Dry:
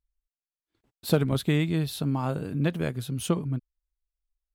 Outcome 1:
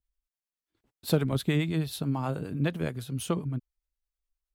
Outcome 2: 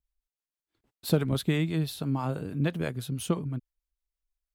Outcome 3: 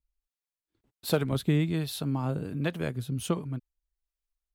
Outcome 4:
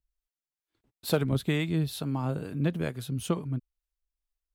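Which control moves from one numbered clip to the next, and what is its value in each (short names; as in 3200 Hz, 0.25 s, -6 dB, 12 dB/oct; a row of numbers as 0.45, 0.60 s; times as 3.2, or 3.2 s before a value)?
harmonic tremolo, rate: 9.5, 6.1, 1.3, 2.2 Hz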